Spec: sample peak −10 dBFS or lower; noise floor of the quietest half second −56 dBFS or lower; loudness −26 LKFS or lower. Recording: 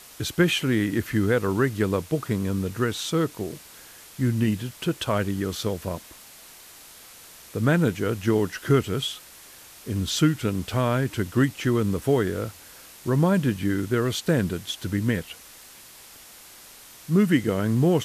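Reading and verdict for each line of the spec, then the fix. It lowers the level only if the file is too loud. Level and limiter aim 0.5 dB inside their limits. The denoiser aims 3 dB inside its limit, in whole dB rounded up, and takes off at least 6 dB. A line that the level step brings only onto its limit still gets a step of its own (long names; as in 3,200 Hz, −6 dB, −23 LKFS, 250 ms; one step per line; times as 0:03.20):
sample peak −8.5 dBFS: out of spec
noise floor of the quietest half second −47 dBFS: out of spec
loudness −25.0 LKFS: out of spec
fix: broadband denoise 11 dB, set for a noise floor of −47 dBFS
level −1.5 dB
brickwall limiter −10.5 dBFS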